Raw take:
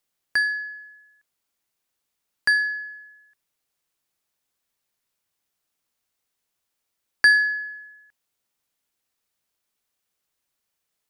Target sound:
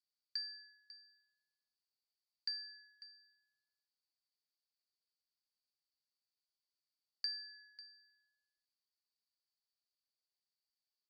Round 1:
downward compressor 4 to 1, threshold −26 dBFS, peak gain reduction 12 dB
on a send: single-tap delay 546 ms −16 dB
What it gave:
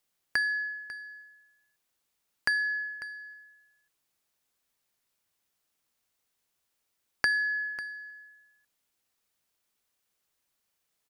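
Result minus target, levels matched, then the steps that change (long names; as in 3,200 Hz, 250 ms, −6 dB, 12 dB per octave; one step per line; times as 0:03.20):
4,000 Hz band −12.0 dB
add after downward compressor: resonant band-pass 4,600 Hz, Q 14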